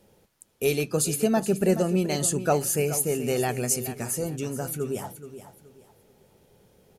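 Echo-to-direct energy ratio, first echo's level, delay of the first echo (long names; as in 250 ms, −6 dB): −12.0 dB, −12.5 dB, 426 ms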